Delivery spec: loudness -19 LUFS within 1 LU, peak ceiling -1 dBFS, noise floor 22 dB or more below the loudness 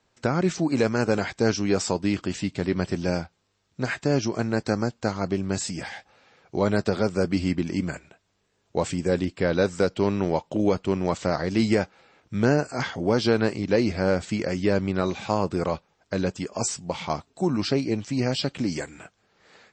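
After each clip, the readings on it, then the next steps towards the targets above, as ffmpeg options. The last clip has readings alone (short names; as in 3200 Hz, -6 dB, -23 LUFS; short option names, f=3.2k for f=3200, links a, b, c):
loudness -26.0 LUFS; peak -9.0 dBFS; loudness target -19.0 LUFS
-> -af "volume=7dB"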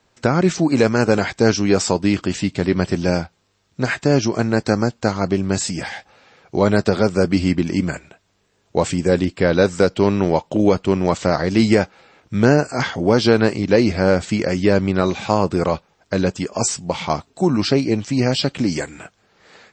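loudness -19.0 LUFS; peak -2.0 dBFS; noise floor -64 dBFS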